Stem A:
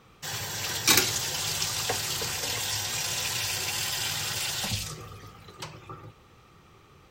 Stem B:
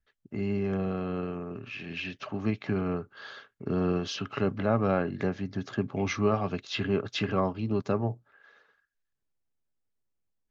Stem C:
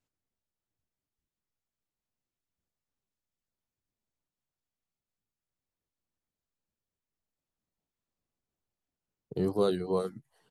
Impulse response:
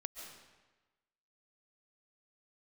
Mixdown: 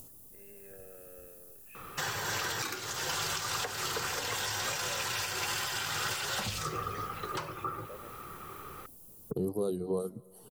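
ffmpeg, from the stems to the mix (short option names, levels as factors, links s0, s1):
-filter_complex "[0:a]equalizer=f=410:t=o:w=1.3:g=6.5,acompressor=threshold=0.0282:ratio=6,adelay=1750,volume=1.33[s0];[1:a]asplit=3[s1][s2][s3];[s1]bandpass=f=530:t=q:w=8,volume=1[s4];[s2]bandpass=f=1840:t=q:w=8,volume=0.501[s5];[s3]bandpass=f=2480:t=q:w=8,volume=0.355[s6];[s4][s5][s6]amix=inputs=3:normalize=0,volume=0.299[s7];[2:a]firequalizer=gain_entry='entry(420,0);entry(1700,-28);entry(2800,-13);entry(11000,13)':delay=0.05:min_phase=1,acompressor=mode=upward:threshold=0.0224:ratio=2.5,volume=1.33,asplit=2[s8][s9];[s9]volume=0.112[s10];[3:a]atrim=start_sample=2205[s11];[s10][s11]afir=irnorm=-1:irlink=0[s12];[s0][s7][s8][s12]amix=inputs=4:normalize=0,equalizer=f=1300:w=1.5:g=11.5,alimiter=limit=0.0708:level=0:latency=1:release=462"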